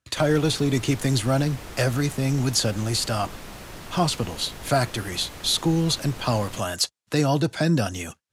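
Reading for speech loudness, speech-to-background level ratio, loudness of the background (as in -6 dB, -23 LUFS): -24.0 LUFS, 16.0 dB, -40.0 LUFS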